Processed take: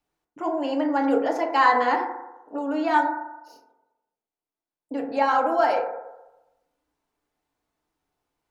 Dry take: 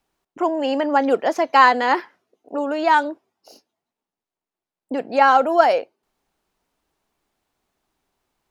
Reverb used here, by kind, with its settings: FDN reverb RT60 1 s, low-frequency decay 0.75×, high-frequency decay 0.25×, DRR 0 dB; gain -8.5 dB

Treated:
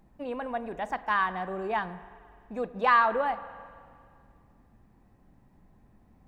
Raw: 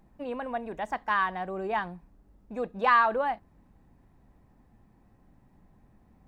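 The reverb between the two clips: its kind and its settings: spring tank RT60 2.2 s, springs 43/48 ms, chirp 65 ms, DRR 14.5 dB

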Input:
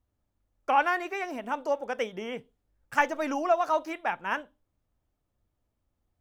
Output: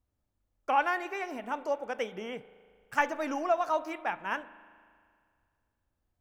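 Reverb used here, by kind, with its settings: spring tank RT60 2.1 s, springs 38 ms, chirp 65 ms, DRR 16 dB; gain -3 dB

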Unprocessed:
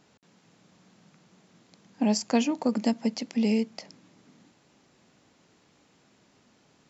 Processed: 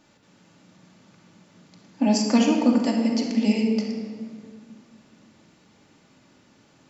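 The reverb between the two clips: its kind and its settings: shoebox room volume 2700 m³, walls mixed, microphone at 2.5 m; gain +1 dB

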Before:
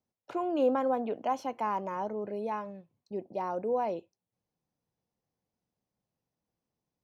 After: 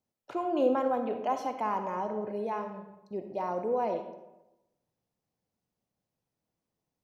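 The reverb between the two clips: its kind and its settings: digital reverb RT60 0.97 s, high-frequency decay 0.6×, pre-delay 15 ms, DRR 6 dB

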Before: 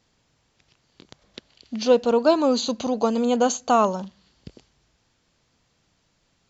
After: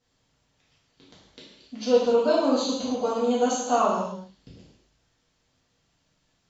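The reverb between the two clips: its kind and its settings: non-linear reverb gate 0.31 s falling, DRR -8 dB; gain -11.5 dB

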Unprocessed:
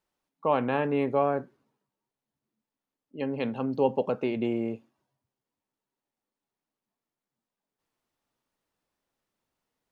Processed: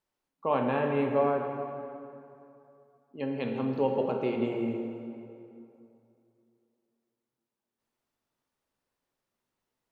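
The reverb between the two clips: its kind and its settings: plate-style reverb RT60 2.8 s, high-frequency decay 0.65×, DRR 2 dB; gain -3.5 dB

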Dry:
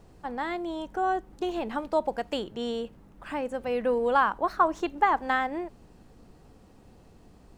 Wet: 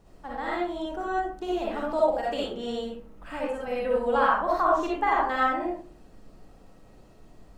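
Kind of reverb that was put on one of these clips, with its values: digital reverb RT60 0.49 s, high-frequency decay 0.5×, pre-delay 20 ms, DRR -5.5 dB; gain -5 dB

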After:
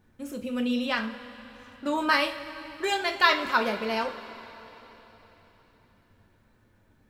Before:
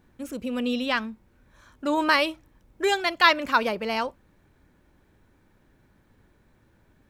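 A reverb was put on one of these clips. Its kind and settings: two-slope reverb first 0.3 s, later 4 s, from -18 dB, DRR 2.5 dB; gain -4 dB

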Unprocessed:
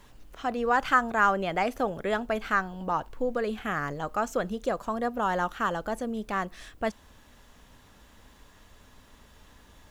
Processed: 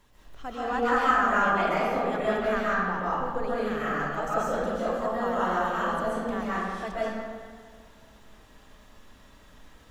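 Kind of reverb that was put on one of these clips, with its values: digital reverb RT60 1.8 s, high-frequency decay 0.65×, pre-delay 95 ms, DRR -9 dB; gain -8 dB

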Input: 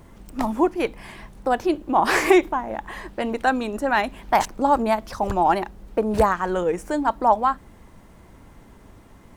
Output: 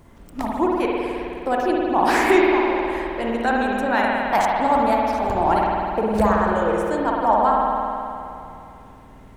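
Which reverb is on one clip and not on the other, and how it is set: spring tank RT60 2.7 s, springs 52 ms, chirp 25 ms, DRR -3 dB; gain -2.5 dB

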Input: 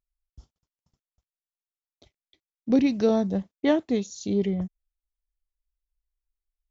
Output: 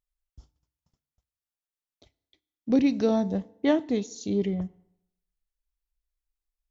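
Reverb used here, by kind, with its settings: FDN reverb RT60 0.78 s, low-frequency decay 1×, high-frequency decay 0.8×, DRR 18 dB; gain -1.5 dB

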